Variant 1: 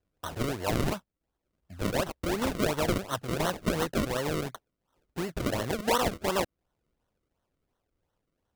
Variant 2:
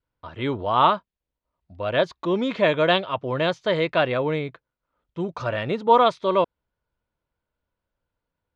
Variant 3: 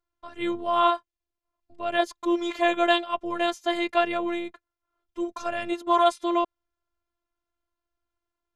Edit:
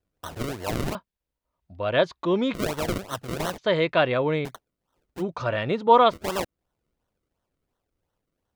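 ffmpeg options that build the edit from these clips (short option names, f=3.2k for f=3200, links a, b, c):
-filter_complex "[1:a]asplit=3[a][b][c];[0:a]asplit=4[d][e][f][g];[d]atrim=end=0.952[h];[a]atrim=start=0.948:end=2.542[i];[e]atrim=start=2.538:end=3.582[j];[b]atrim=start=3.578:end=4.452[k];[f]atrim=start=4.448:end=5.23[l];[c]atrim=start=5.17:end=6.15[m];[g]atrim=start=6.09[n];[h][i]acrossfade=d=0.004:c1=hsin:c2=hsin[o];[o][j]acrossfade=d=0.004:c1=hsin:c2=hsin[p];[p][k]acrossfade=d=0.004:c1=hsin:c2=hsin[q];[q][l]acrossfade=d=0.004:c1=hsin:c2=hsin[r];[r][m]acrossfade=d=0.06:c1=tri:c2=tri[s];[s][n]acrossfade=d=0.06:c1=tri:c2=tri"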